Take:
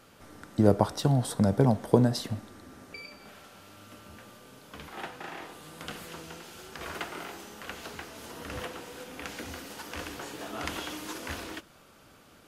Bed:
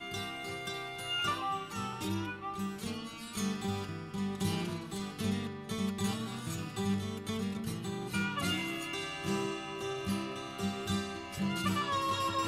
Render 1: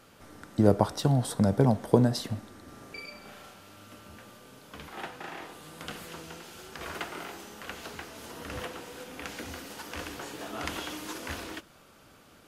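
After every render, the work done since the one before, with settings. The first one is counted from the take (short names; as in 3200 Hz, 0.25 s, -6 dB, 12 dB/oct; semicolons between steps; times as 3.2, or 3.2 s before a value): 2.64–3.54 doubler 37 ms -2.5 dB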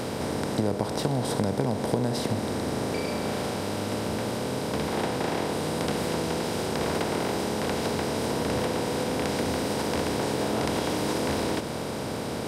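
per-bin compression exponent 0.4; compressor 4:1, threshold -23 dBFS, peak gain reduction 9.5 dB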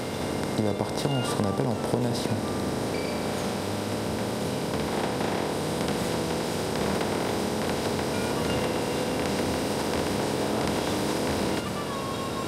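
add bed -4 dB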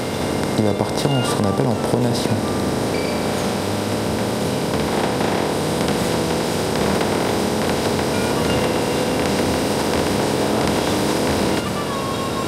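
gain +8 dB; limiter -3 dBFS, peak gain reduction 2.5 dB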